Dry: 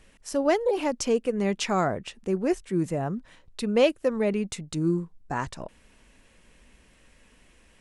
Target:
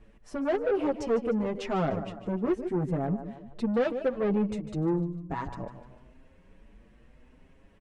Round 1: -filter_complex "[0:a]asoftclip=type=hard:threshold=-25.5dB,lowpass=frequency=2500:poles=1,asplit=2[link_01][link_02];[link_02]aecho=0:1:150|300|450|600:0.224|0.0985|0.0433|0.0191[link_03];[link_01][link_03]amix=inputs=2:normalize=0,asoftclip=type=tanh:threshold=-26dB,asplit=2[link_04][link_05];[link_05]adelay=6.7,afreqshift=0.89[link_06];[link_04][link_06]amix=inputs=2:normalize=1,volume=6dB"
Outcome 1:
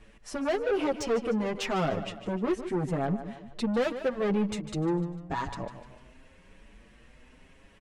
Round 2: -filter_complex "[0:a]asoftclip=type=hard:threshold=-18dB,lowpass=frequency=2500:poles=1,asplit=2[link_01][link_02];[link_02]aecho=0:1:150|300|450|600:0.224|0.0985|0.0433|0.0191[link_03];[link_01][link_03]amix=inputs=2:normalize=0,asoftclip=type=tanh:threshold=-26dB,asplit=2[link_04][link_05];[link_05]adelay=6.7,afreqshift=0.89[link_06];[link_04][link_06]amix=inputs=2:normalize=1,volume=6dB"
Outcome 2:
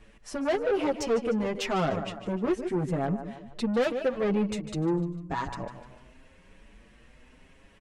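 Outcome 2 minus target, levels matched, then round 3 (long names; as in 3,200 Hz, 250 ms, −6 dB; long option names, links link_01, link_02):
2,000 Hz band +3.5 dB
-filter_complex "[0:a]asoftclip=type=hard:threshold=-18dB,lowpass=frequency=660:poles=1,asplit=2[link_01][link_02];[link_02]aecho=0:1:150|300|450|600:0.224|0.0985|0.0433|0.0191[link_03];[link_01][link_03]amix=inputs=2:normalize=0,asoftclip=type=tanh:threshold=-26dB,asplit=2[link_04][link_05];[link_05]adelay=6.7,afreqshift=0.89[link_06];[link_04][link_06]amix=inputs=2:normalize=1,volume=6dB"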